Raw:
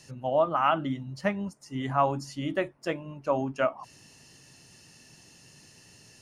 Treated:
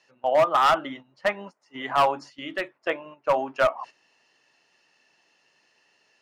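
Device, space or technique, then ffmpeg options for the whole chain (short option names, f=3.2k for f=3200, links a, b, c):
walkie-talkie: -filter_complex "[0:a]highpass=590,lowpass=3k,asoftclip=type=hard:threshold=-22.5dB,agate=range=-12dB:threshold=-49dB:ratio=16:detection=peak,asettb=1/sr,asplit=3[a][b][c];[a]atrim=end=2.304[d];[b]atrim=start=2.3:end=2.79,asetpts=PTS-STARTPTS,afade=t=in:d=0.004:c=qsin,afade=t=out:st=0.486:d=0.004:c=qsin,equalizer=f=770:t=o:w=1.5:g=-10[e];[c]atrim=start=2.786[f];[d][e]acrossfade=d=0.004:c1=hsin:c2=qsin[g];[g][f]acrossfade=d=0.004:c1=qsin:c2=hsin,volume=8.5dB"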